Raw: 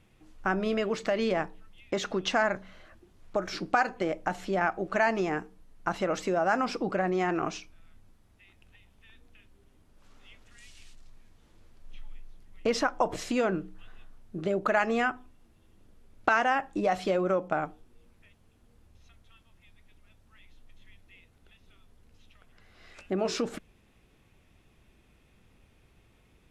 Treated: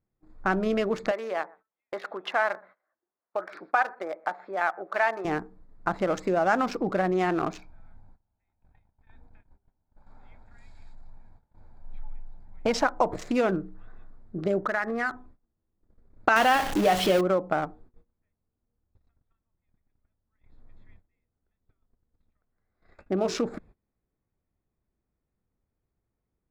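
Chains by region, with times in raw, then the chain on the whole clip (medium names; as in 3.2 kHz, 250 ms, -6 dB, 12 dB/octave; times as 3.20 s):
1.11–5.25 s: band-pass 650–2500 Hz + delay 123 ms -23 dB
7.58–12.84 s: peaking EQ 880 Hz +7.5 dB 0.47 oct + comb 1.3 ms, depth 39%
14.58–15.14 s: FFT filter 750 Hz 0 dB, 1.9 kHz +8 dB, 3.3 kHz -15 dB + compression 2:1, threshold -32 dBFS
16.36–17.21 s: jump at every zero crossing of -28.5 dBFS + peaking EQ 3.1 kHz +8.5 dB 0.31 oct + de-hum 137.5 Hz, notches 31
whole clip: local Wiener filter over 15 samples; gate -53 dBFS, range -22 dB; trim +3 dB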